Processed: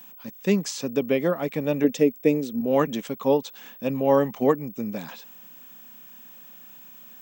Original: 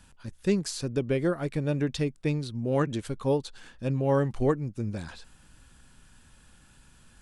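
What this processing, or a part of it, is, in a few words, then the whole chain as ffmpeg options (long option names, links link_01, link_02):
old television with a line whistle: -filter_complex "[0:a]highpass=frequency=200:width=0.5412,highpass=frequency=200:width=1.3066,equalizer=frequency=350:width_type=q:width=4:gain=-9,equalizer=frequency=1500:width_type=q:width=4:gain=-8,equalizer=frequency=4400:width_type=q:width=4:gain=-9,lowpass=frequency=7000:width=0.5412,lowpass=frequency=7000:width=1.3066,aeval=exprs='val(0)+0.00282*sin(2*PI*15734*n/s)':channel_layout=same,asettb=1/sr,asplit=3[link_01][link_02][link_03];[link_01]atrim=end=1.844[link_04];[link_02]atrim=start=1.84:end=2.61,asetpts=PTS-STARTPTS,afade=type=in:duration=0.004:curve=qsin,afade=type=out:start_time=0.766:duration=0.004:curve=qsin,equalizer=frequency=125:width_type=o:width=1:gain=-4,equalizer=frequency=250:width_type=o:width=1:gain=5,equalizer=frequency=500:width_type=o:width=1:gain=8,equalizer=frequency=1000:width_type=o:width=1:gain=-9,equalizer=frequency=4000:width_type=o:width=1:gain=-7,equalizer=frequency=8000:width_type=o:width=1:gain=4[link_05];[link_03]atrim=start=2.606[link_06];[link_04][link_05]acrossfade=duration=0.004:curve1=hsin:curve2=qsin[link_07];[link_07][link_06]acrossfade=duration=0.004:curve1=qsin:curve2=hsin,volume=7.5dB"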